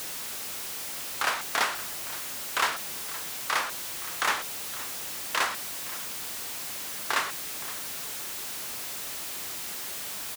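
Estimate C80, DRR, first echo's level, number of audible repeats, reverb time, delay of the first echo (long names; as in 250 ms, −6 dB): no reverb audible, no reverb audible, −17.0 dB, 1, no reverb audible, 518 ms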